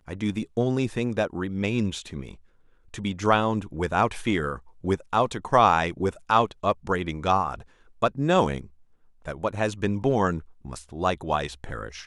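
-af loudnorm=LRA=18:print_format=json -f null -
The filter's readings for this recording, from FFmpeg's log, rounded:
"input_i" : "-25.9",
"input_tp" : "-4.5",
"input_lra" : "4.3",
"input_thresh" : "-36.6",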